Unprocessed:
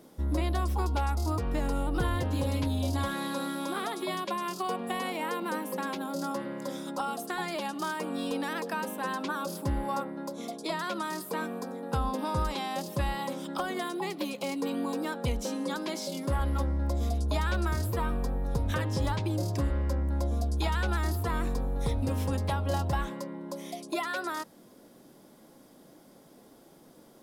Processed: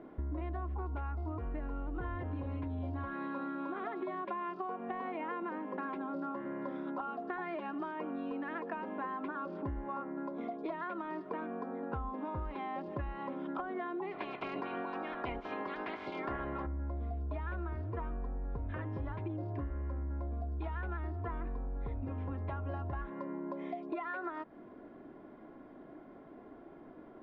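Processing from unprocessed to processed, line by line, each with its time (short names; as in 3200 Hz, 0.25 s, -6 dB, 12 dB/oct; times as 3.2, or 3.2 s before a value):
14.11–16.65 spectral limiter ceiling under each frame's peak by 24 dB
whole clip: LPF 2100 Hz 24 dB/oct; comb 2.9 ms, depth 46%; compressor, threshold -39 dBFS; gain +2.5 dB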